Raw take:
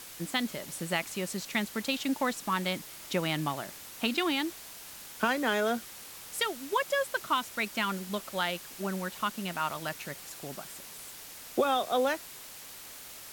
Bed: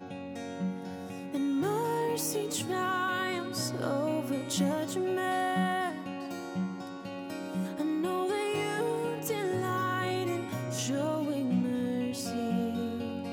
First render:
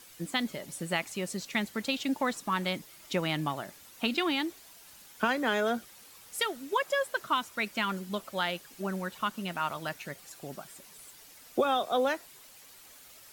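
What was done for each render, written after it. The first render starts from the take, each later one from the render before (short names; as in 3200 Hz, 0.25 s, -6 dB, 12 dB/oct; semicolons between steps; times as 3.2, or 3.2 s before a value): denoiser 9 dB, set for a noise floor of -47 dBFS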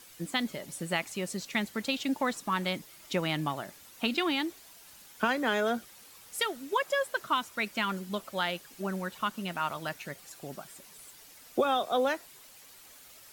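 nothing audible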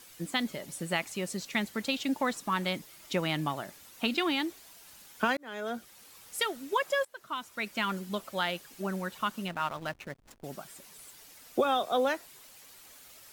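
5.37–6.35 fade in equal-power; 7.05–7.86 fade in, from -22 dB; 9.48–10.44 backlash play -38 dBFS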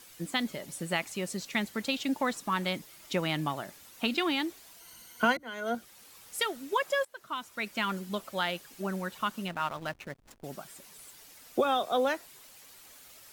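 4.8–5.75 ripple EQ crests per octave 1.9, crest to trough 11 dB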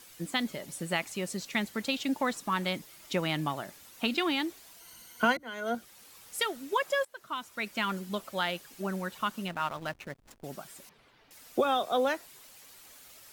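10.89–11.31 air absorption 330 m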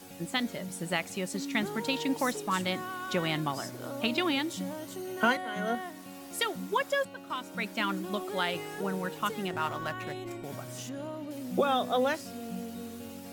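add bed -8 dB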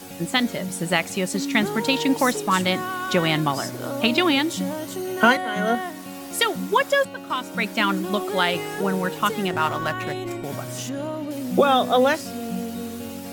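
gain +9.5 dB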